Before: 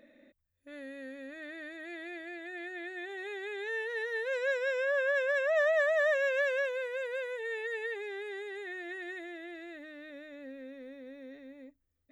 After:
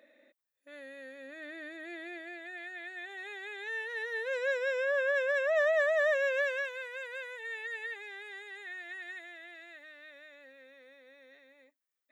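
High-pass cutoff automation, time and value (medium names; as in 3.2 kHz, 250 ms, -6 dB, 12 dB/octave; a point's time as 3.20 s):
1.15 s 460 Hz
1.75 s 160 Hz
2.66 s 660 Hz
3.90 s 660 Hz
4.73 s 210 Hz
6.18 s 210 Hz
6.64 s 870 Hz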